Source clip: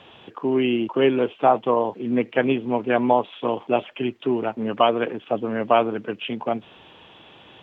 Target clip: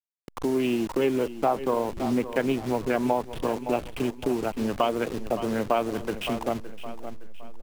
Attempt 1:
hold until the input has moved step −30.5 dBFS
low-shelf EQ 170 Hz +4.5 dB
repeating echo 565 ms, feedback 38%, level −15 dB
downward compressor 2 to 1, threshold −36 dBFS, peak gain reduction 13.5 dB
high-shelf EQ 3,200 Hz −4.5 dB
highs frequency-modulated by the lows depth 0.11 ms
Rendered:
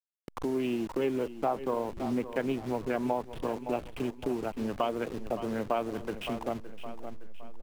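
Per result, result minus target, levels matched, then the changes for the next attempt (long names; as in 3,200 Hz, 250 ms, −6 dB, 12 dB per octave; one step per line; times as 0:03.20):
downward compressor: peak gain reduction +5.5 dB; 8,000 Hz band −3.5 dB
change: downward compressor 2 to 1, threshold −25 dBFS, peak gain reduction 8 dB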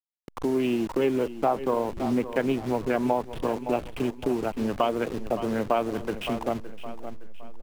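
8,000 Hz band −3.5 dB
remove: high-shelf EQ 3,200 Hz −4.5 dB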